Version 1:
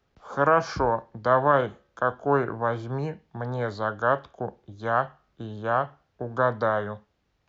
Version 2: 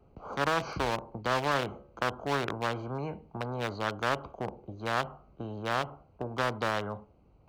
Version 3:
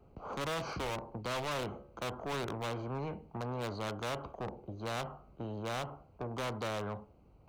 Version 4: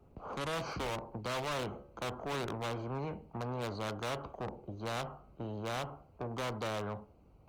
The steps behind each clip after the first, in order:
local Wiener filter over 25 samples; spectrum-flattening compressor 2:1; trim -6 dB
saturation -32.5 dBFS, distortion -6 dB
Opus 32 kbps 48 kHz

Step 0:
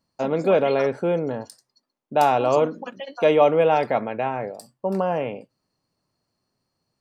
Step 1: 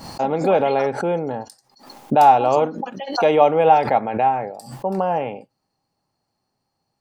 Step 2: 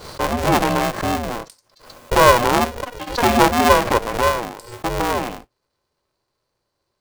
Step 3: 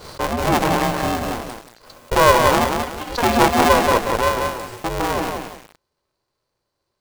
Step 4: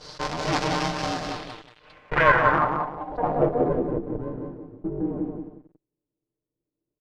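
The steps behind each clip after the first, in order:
peaking EQ 810 Hz +13 dB 0.21 oct; swell ahead of each attack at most 100 dB/s
polarity switched at an audio rate 240 Hz
bit-crushed delay 182 ms, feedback 35%, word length 6-bit, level -4 dB; trim -1.5 dB
comb filter that takes the minimum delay 6.6 ms; low-pass sweep 5.3 kHz -> 330 Hz, 1.22–3.99 s; resampled via 32 kHz; trim -6 dB

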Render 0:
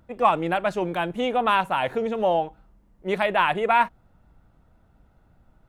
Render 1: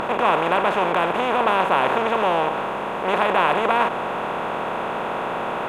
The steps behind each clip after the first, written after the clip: spectral levelling over time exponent 0.2; trim -5.5 dB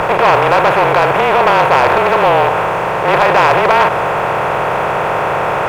frequency shift -32 Hz; graphic EQ 125/250/500/2000/4000/8000 Hz +6/-11/+3/+4/-5/-5 dB; waveshaping leveller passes 2; trim +2.5 dB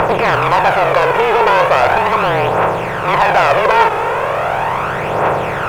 phaser 0.38 Hz, delay 2.4 ms, feedback 49%; trim -2.5 dB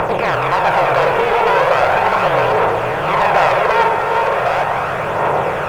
chunks repeated in reverse 665 ms, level -4.5 dB; on a send: repeats whose band climbs or falls 102 ms, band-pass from 610 Hz, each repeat 1.4 oct, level -2 dB; on the sum: trim -4 dB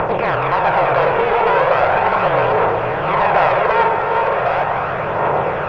distance through air 230 m

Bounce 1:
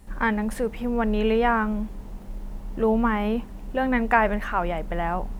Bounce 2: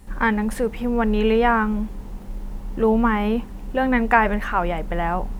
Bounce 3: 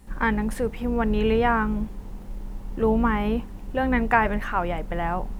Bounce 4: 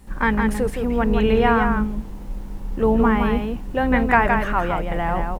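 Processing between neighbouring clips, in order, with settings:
band-stop 640 Hz, Q 13; trim +3.5 dB
octave divider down 2 oct, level -5 dB; trim -3.5 dB
delay 166 ms -5 dB; trim +3 dB

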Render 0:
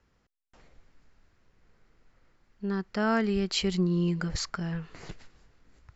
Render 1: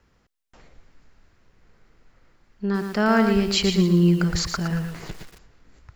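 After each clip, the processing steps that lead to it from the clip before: bit-crushed delay 115 ms, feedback 35%, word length 8-bit, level -6 dB; trim +6.5 dB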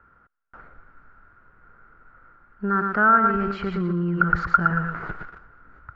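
peak limiter -18.5 dBFS, peak gain reduction 10.5 dB; resonant low-pass 1.4 kHz, resonance Q 12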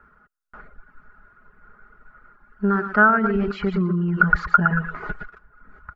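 reverb removal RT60 0.79 s; comb 4.8 ms, depth 56%; trim +2.5 dB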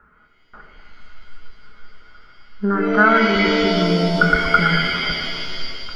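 pitch-shifted reverb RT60 2.2 s, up +7 st, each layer -2 dB, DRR 4 dB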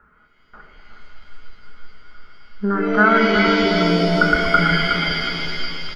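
feedback delay 365 ms, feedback 41%, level -7 dB; trim -1 dB

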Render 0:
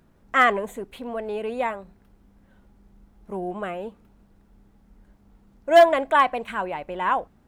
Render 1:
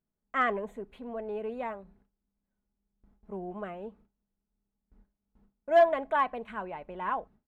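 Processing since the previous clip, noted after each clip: low-pass 1.7 kHz 6 dB/octave; gate with hold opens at -44 dBFS; comb 4.7 ms, depth 31%; trim -8 dB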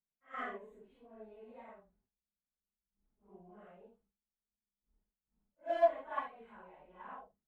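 phase randomisation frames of 200 ms; upward expansion 1.5:1, over -36 dBFS; trim -7 dB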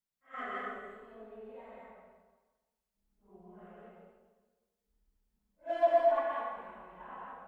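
plate-style reverb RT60 1.3 s, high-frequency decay 0.9×, pre-delay 105 ms, DRR -2.5 dB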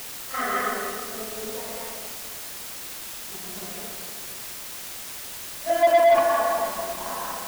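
two-band feedback delay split 700 Hz, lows 277 ms, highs 162 ms, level -8.5 dB; in parallel at -11 dB: word length cut 6-bit, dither triangular; on the sum: waveshaping leveller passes 2; trim +3 dB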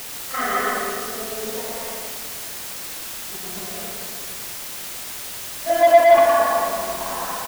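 delay 112 ms -4.5 dB; trim +3 dB

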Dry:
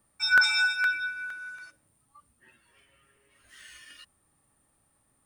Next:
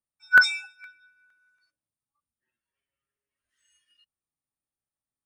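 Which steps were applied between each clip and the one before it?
spectral noise reduction 17 dB; upward expansion 1.5:1, over -47 dBFS; trim +5.5 dB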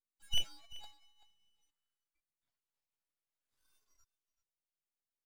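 low-pass that closes with the level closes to 960 Hz, closed at -24 dBFS; delay 385 ms -18.5 dB; full-wave rectifier; trim -5 dB

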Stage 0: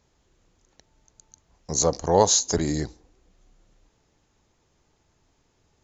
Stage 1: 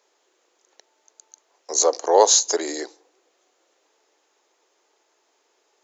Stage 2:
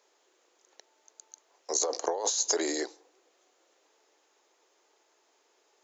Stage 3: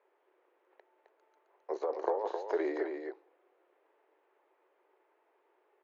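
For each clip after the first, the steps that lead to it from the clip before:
steep high-pass 360 Hz 36 dB/octave; trim +4 dB
compressor with a negative ratio -22 dBFS, ratio -1; trim -6.5 dB
cabinet simulation 120–2300 Hz, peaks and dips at 180 Hz -8 dB, 260 Hz -5 dB, 380 Hz +6 dB, 560 Hz +3 dB, 930 Hz +3 dB; delay 263 ms -6 dB; trim -4.5 dB

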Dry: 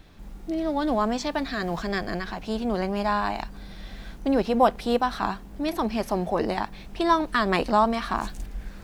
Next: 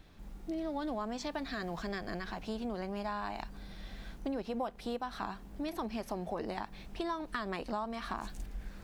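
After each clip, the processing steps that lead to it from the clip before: compression 6:1, threshold -27 dBFS, peak gain reduction 13 dB; trim -6.5 dB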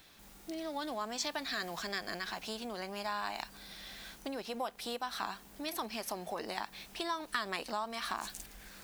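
tilt EQ +3.5 dB/octave; trim +1 dB

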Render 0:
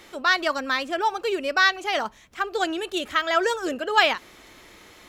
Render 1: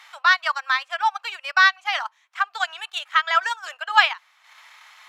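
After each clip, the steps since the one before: transient shaper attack +1 dB, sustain -11 dB; steep high-pass 850 Hz 36 dB/octave; treble shelf 5.7 kHz -11.5 dB; trim +4.5 dB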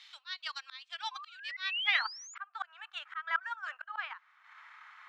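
painted sound rise, 1.11–2.35 s, 1–7.2 kHz -28 dBFS; band-pass sweep 3.9 kHz -> 1.4 kHz, 1.54–2.18 s; slow attack 371 ms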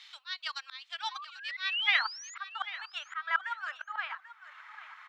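feedback delay 790 ms, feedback 23%, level -15 dB; trim +2.5 dB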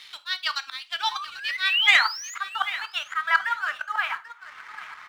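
waveshaping leveller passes 1; gated-style reverb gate 110 ms falling, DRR 10.5 dB; trim +6 dB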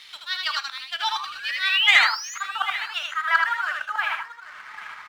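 delay 79 ms -3.5 dB

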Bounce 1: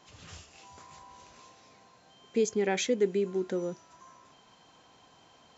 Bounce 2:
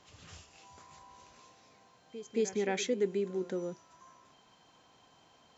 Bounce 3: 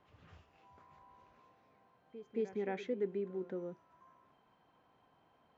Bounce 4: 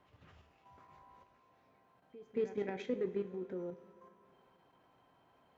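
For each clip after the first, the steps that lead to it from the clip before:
pre-echo 223 ms -14.5 dB; trim -4 dB
low-pass 1.9 kHz 12 dB/octave; trim -5.5 dB
level held to a coarse grid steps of 9 dB; Chebyshev shaper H 7 -33 dB, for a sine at -28.5 dBFS; two-slope reverb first 0.35 s, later 2.8 s, from -17 dB, DRR 7.5 dB; trim +4 dB

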